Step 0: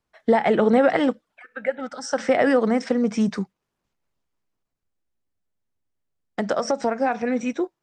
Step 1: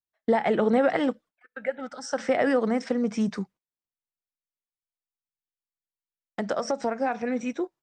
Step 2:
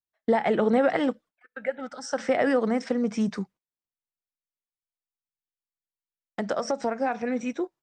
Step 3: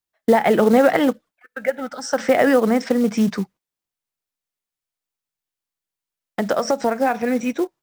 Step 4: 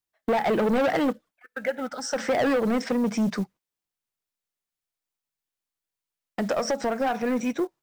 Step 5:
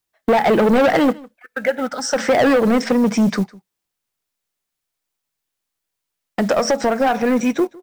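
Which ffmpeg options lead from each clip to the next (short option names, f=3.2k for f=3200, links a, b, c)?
-af "agate=range=-22dB:threshold=-43dB:ratio=16:detection=peak,volume=-4.5dB"
-af anull
-af "acrusher=bits=6:mode=log:mix=0:aa=0.000001,volume=7.5dB"
-af "asoftclip=type=tanh:threshold=-17dB,volume=-2dB"
-af "aecho=1:1:155:0.0708,volume=8.5dB"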